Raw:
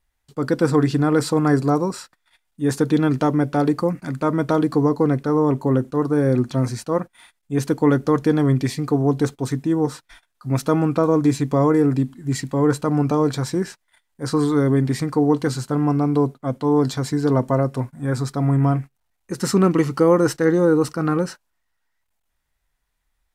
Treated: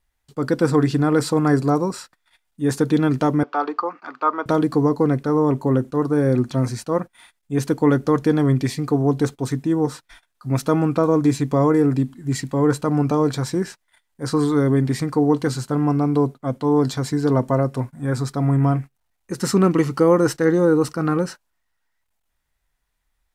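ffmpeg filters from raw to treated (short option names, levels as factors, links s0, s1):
-filter_complex "[0:a]asettb=1/sr,asplit=3[s0][s1][s2];[s0]atrim=end=3.434[s3];[s1]atrim=start=3.43:end=4.46,asetpts=PTS-STARTPTS,afade=t=in:d=0.004:c=qsin,afade=t=out:st=1.026:d=0.004:c=qsin,highpass=f=390:w=0.5412,highpass=f=390:w=1.3066,equalizer=f=390:t=q:w=4:g=-4,equalizer=f=560:t=q:w=4:g=-8,equalizer=f=840:t=q:w=4:g=4,equalizer=f=1200:t=q:w=4:g=10,equalizer=f=2000:t=q:w=4:g=-5,equalizer=f=3700:t=q:w=4:g=-4,lowpass=f=4300:w=0.5412,lowpass=f=4300:w=1.3066[s4];[s2]atrim=start=4.456[s5];[s3][s4]acrossfade=d=0.004:c1=hsin:c2=qsin[s6];[s6][s5]acrossfade=d=0.004:c1=qsin:c2=hsin"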